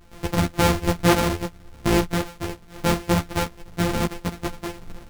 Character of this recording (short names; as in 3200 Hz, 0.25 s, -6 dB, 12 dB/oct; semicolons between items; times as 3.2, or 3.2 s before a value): a buzz of ramps at a fixed pitch in blocks of 256 samples; random-step tremolo 3.5 Hz; a shimmering, thickened sound